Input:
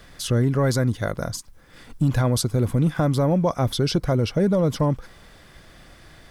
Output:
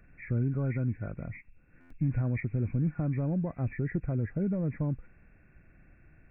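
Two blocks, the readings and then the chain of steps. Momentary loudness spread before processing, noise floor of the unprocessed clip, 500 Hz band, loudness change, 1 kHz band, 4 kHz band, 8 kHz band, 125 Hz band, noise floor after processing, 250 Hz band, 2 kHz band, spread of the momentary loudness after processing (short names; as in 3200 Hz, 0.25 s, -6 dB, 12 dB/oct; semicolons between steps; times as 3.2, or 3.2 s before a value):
7 LU, -50 dBFS, -16.0 dB, -9.5 dB, -19.5 dB, under -40 dB, under -40 dB, -8.0 dB, -60 dBFS, -9.0 dB, -10.0 dB, 9 LU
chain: nonlinear frequency compression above 1400 Hz 4:1; ten-band EQ 500 Hz -7 dB, 1000 Hz -11 dB, 2000 Hz -11 dB; stuck buffer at 1.8, samples 512, times 8; gain -7.5 dB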